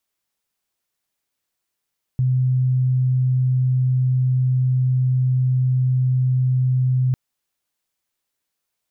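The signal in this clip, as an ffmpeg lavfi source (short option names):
-f lavfi -i "sine=f=128:d=4.95:r=44100,volume=3.06dB"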